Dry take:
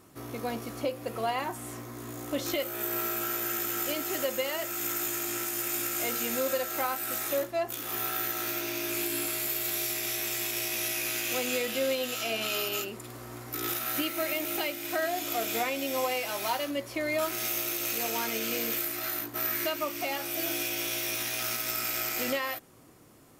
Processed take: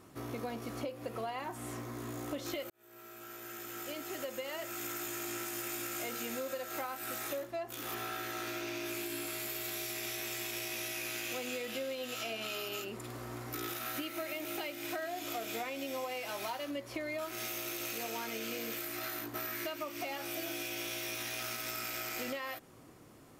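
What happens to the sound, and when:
2.70–5.72 s: fade in
7.94–8.86 s: treble shelf 11 kHz -10.5 dB
whole clip: treble shelf 6.8 kHz -6.5 dB; compression, threshold -36 dBFS

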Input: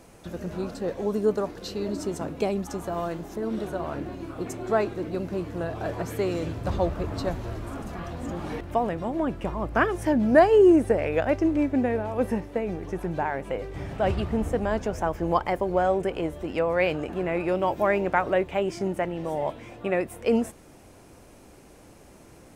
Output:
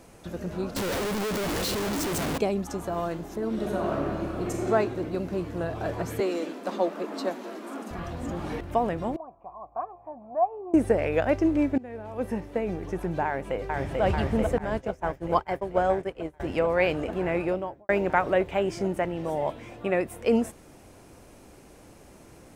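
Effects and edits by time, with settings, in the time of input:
0.76–2.38 s: one-bit comparator
3.55–4.66 s: reverb throw, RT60 2.2 s, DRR -1 dB
6.20–7.91 s: steep high-pass 200 Hz 72 dB/octave
9.16–10.74 s: cascade formant filter a
11.78–12.63 s: fade in, from -22.5 dB
13.25–14.02 s: echo throw 440 ms, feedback 85%, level -1.5 dB
14.58–16.40 s: expander -21 dBFS
17.35–17.89 s: studio fade out

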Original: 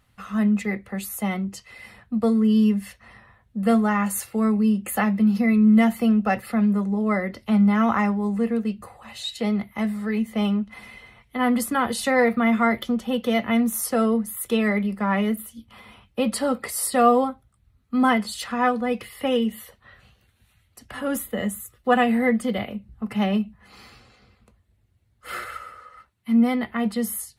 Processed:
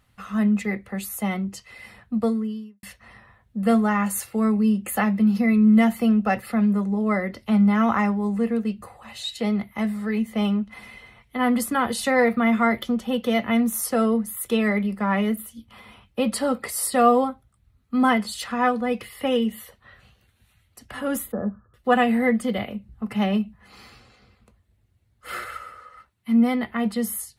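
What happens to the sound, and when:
2.21–2.83 s: fade out quadratic
21.32–21.74 s: Chebyshev low-pass 1.7 kHz, order 10

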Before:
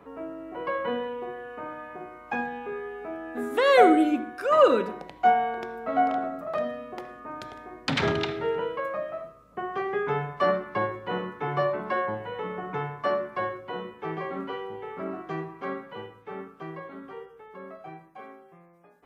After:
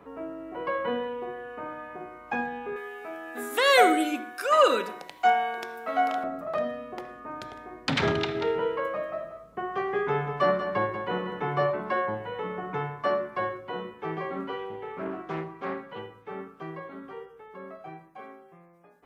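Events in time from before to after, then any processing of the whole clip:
2.76–6.24 s: tilt EQ +3.5 dB/octave
8.16–11.71 s: delay 188 ms -9 dB
14.59–15.99 s: loudspeaker Doppler distortion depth 0.25 ms

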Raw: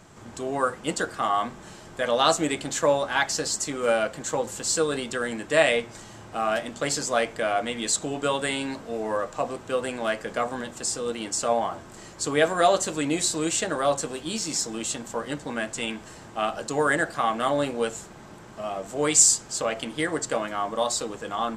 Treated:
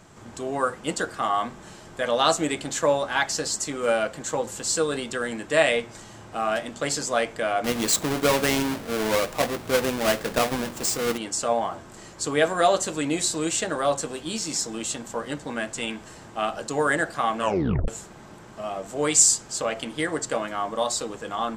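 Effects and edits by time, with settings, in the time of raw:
7.64–11.18 s: square wave that keeps the level
17.39 s: tape stop 0.49 s

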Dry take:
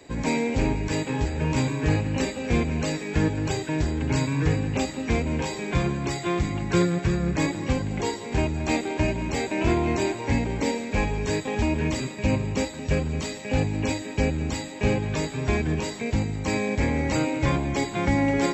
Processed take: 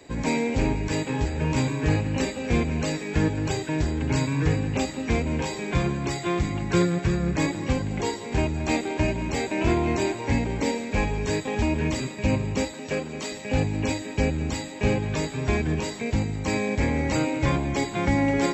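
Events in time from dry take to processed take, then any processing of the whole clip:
12.74–13.32 s: high-pass 250 Hz

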